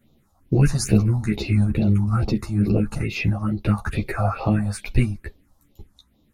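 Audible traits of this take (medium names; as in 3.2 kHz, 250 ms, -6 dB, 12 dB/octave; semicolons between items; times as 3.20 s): phasing stages 4, 2.3 Hz, lowest notch 360–1700 Hz; tremolo saw down 0.76 Hz, depth 30%; a shimmering, thickened sound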